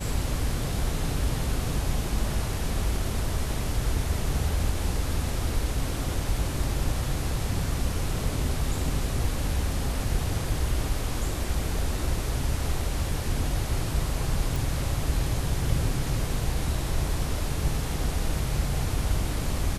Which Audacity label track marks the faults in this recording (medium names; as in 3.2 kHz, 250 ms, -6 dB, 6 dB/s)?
14.560000	14.560000	pop